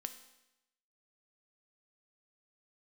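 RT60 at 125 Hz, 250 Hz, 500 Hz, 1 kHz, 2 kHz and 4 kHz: 0.95 s, 0.90 s, 0.90 s, 0.90 s, 0.90 s, 0.90 s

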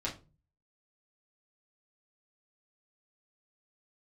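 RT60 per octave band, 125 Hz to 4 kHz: 0.70 s, 0.45 s, 0.35 s, 0.30 s, 0.25 s, 0.20 s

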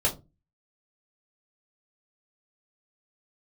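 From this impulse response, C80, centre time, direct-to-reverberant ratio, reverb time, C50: 21.0 dB, 14 ms, -5.5 dB, 0.25 s, 14.5 dB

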